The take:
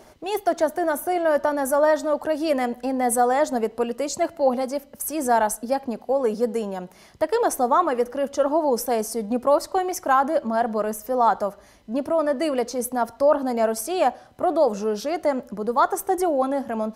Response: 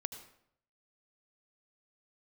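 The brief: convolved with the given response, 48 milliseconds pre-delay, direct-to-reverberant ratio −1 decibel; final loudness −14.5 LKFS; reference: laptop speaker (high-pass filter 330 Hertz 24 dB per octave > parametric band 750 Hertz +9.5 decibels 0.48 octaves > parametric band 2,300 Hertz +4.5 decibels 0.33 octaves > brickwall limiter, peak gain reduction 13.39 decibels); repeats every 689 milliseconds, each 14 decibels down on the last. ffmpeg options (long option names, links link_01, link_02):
-filter_complex "[0:a]aecho=1:1:689|1378:0.2|0.0399,asplit=2[link_01][link_02];[1:a]atrim=start_sample=2205,adelay=48[link_03];[link_02][link_03]afir=irnorm=-1:irlink=0,volume=2dB[link_04];[link_01][link_04]amix=inputs=2:normalize=0,highpass=frequency=330:width=0.5412,highpass=frequency=330:width=1.3066,equalizer=frequency=750:width_type=o:width=0.48:gain=9.5,equalizer=frequency=2300:width_type=o:width=0.33:gain=4.5,volume=5dB,alimiter=limit=-6dB:level=0:latency=1"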